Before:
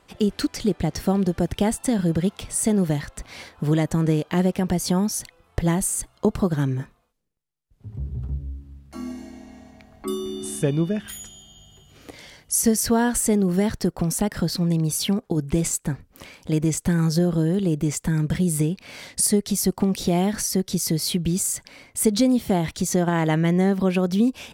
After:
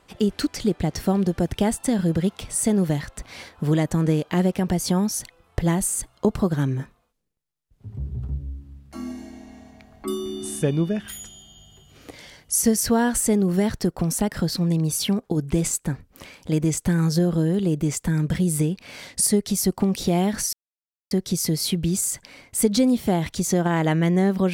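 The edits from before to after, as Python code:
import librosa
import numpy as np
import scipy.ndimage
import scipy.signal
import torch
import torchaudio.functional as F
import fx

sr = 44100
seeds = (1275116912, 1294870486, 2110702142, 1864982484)

y = fx.edit(x, sr, fx.insert_silence(at_s=20.53, length_s=0.58), tone=tone)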